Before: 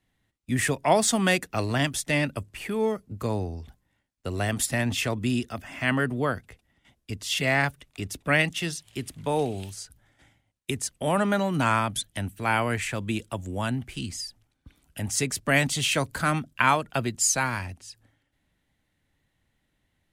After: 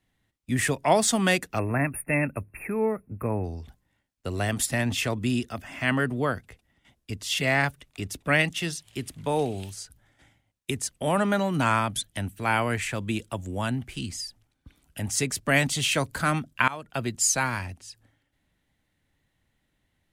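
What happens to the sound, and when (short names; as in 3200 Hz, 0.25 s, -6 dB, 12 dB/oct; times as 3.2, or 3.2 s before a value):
1.59–3.44 spectral delete 2700–8900 Hz
16.68–17.12 fade in, from -21.5 dB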